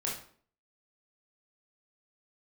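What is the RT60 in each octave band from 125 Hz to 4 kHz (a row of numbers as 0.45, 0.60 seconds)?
0.50, 0.60, 0.55, 0.50, 0.45, 0.40 seconds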